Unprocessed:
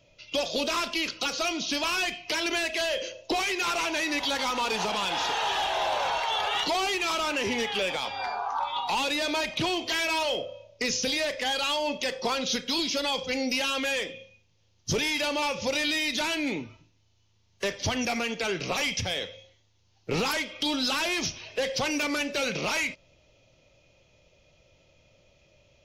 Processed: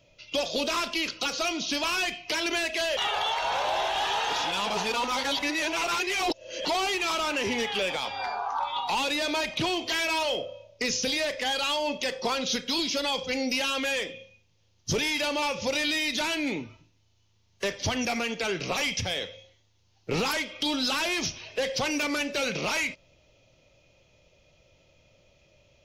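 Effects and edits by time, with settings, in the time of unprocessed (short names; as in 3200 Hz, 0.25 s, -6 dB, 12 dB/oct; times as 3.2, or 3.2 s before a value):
2.97–6.65 reverse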